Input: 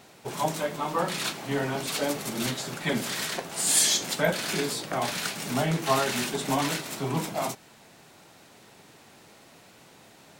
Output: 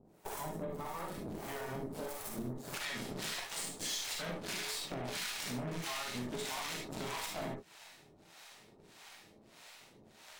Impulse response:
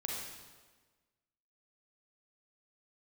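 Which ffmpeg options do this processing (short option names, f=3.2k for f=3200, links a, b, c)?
-filter_complex "[0:a]asoftclip=type=tanh:threshold=-23.5dB,acrossover=split=590[a][b];[a]aeval=exprs='val(0)*(1-1/2+1/2*cos(2*PI*1.6*n/s))':c=same[c];[b]aeval=exprs='val(0)*(1-1/2-1/2*cos(2*PI*1.6*n/s))':c=same[d];[c][d]amix=inputs=2:normalize=0,alimiter=level_in=7dB:limit=-24dB:level=0:latency=1:release=314,volume=-7dB,aeval=exprs='0.0282*(cos(1*acos(clip(val(0)/0.0282,-1,1)))-cos(1*PI/2))+0.00398*(cos(3*acos(clip(val(0)/0.0282,-1,1)))-cos(3*PI/2))+0.00447*(cos(4*acos(clip(val(0)/0.0282,-1,1)))-cos(4*PI/2))+0.002*(cos(5*acos(clip(val(0)/0.0282,-1,1)))-cos(5*PI/2))+0.00282*(cos(7*acos(clip(val(0)/0.0282,-1,1)))-cos(7*PI/2))':c=same,asetnsamples=n=441:p=0,asendcmd='2.74 equalizer g 4.5',equalizer=f=3.5k:w=0.41:g=-11.5[e];[1:a]atrim=start_sample=2205,atrim=end_sample=3528[f];[e][f]afir=irnorm=-1:irlink=0,acompressor=threshold=-48dB:ratio=3,volume=9dB"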